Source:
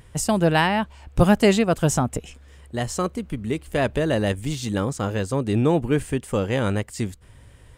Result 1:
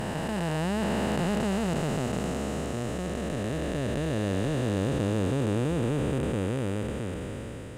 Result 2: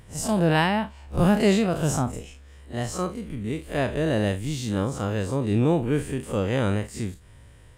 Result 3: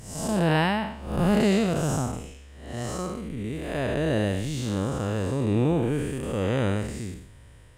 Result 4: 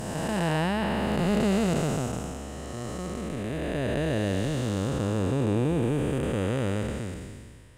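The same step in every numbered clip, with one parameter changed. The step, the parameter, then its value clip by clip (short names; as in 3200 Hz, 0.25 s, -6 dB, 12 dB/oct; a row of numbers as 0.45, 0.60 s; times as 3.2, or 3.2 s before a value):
time blur, width: 1790, 86, 226, 671 ms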